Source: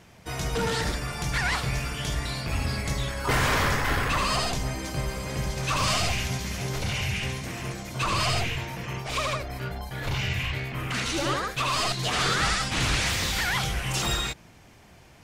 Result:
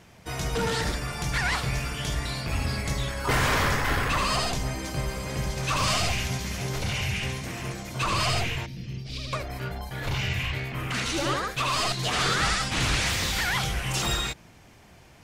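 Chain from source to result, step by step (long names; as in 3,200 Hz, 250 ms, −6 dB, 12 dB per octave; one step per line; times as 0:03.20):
0:08.66–0:09.33: drawn EQ curve 240 Hz 0 dB, 1,000 Hz −26 dB, 4,800 Hz 0 dB, 7,000 Hz −14 dB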